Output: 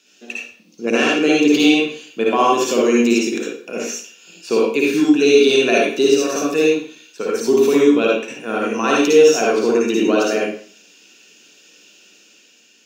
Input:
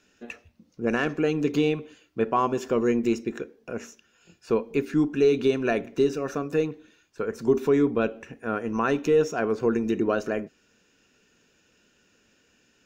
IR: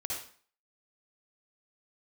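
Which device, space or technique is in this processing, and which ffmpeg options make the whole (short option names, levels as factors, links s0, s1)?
far laptop microphone: -filter_complex "[1:a]atrim=start_sample=2205[s0];[0:a][s0]afir=irnorm=-1:irlink=0,highpass=f=200:w=0.5412,highpass=f=200:w=1.3066,dynaudnorm=f=160:g=9:m=1.58,highshelf=f=2200:t=q:w=1.5:g=8.5,volume=1.5"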